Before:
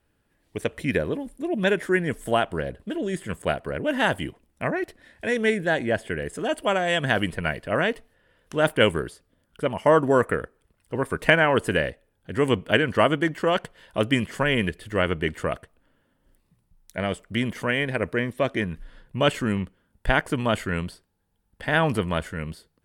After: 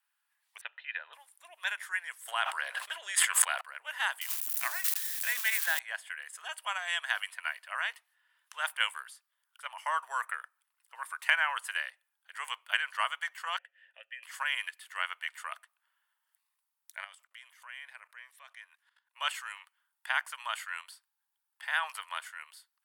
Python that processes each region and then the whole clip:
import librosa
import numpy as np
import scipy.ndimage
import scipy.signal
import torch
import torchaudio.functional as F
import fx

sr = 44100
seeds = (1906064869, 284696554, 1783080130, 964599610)

y = fx.chain(x, sr, fx.steep_lowpass(hz=3700.0, slope=48),
    fx.notch_comb(f0_hz=1100.0), at=(0.61, 1.13))
y = fx.chain(y, sr, fx.high_shelf(hz=9900.0, db=-6.5),
    fx.env_flatten(amount_pct=100), at=(2.28, 3.61))
y = fx.chain(y, sr, fx.crossing_spikes(level_db=-24.0),
    fx.highpass(hz=270.0, slope=12),
    fx.transient(attack_db=5, sustain_db=11), at=(4.21, 5.79))
y = fx.chain(y, sr, fx.vowel_filter(vowel='e'),
    fx.band_shelf(hz=5100.0, db=-8.5, octaves=1.0),
    fx.band_squash(depth_pct=40), at=(13.58, 14.23))
y = fx.chain(y, sr, fx.low_shelf(hz=68.0, db=11.5),
    fx.level_steps(step_db=18), at=(17.04, 19.16))
y = scipy.signal.sosfilt(scipy.signal.butter(6, 920.0, 'highpass', fs=sr, output='sos'), y)
y = fx.high_shelf(y, sr, hz=10000.0, db=8.0)
y = y * librosa.db_to_amplitude(-6.5)